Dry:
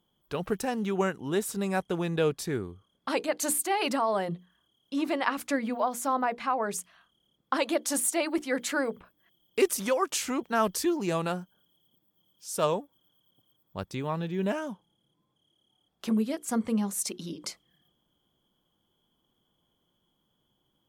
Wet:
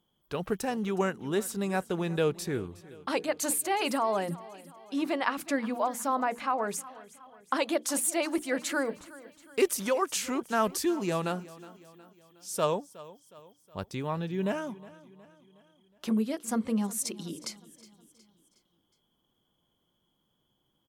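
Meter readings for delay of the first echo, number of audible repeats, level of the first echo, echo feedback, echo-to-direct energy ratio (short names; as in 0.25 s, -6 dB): 0.365 s, 3, -19.0 dB, 50%, -18.0 dB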